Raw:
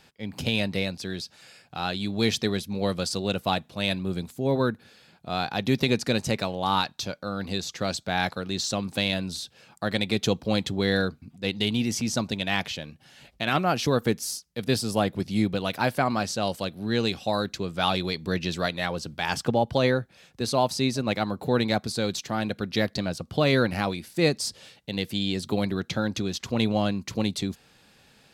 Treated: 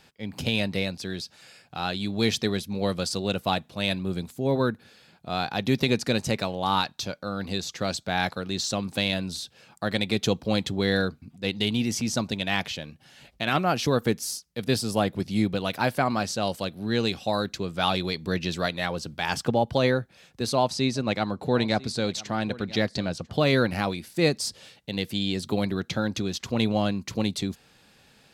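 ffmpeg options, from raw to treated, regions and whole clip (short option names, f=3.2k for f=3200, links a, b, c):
-filter_complex "[0:a]asettb=1/sr,asplit=3[a][b][c];[a]atrim=end=20.554[d];[b]atrim=start=20.55:end=23.33,asetpts=PTS-STARTPTS,afade=t=in:d=0.004:c=qsin,afade=t=out:st=2.776:d=0.004:c=qsin,lowpass=8.5k,aecho=1:1:995:0.1,atrim=end_sample=122598[e];[c]atrim=start=23.326[f];[d][e]acrossfade=d=0.004:c1=hsin:c2=qsin[g];[g][f]acrossfade=d=0.004:c1=qsin:c2=hsin"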